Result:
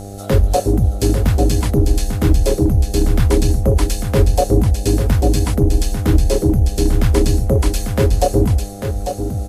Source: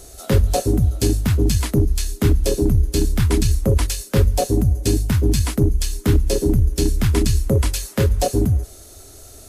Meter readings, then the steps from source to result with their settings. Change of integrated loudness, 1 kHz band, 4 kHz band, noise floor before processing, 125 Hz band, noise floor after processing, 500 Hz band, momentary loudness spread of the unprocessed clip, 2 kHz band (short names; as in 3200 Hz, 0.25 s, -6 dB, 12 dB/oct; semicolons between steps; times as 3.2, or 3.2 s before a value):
+2.5 dB, +6.0 dB, 0.0 dB, -42 dBFS, +2.5 dB, -29 dBFS, +4.5 dB, 2 LU, +1.5 dB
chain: downsampling 32000 Hz; bell 700 Hz +6 dB 2 oct; buzz 100 Hz, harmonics 8, -32 dBFS -3 dB/oct; low shelf 79 Hz +5.5 dB; on a send: echo 0.846 s -7 dB; on the sum: gain -1 dB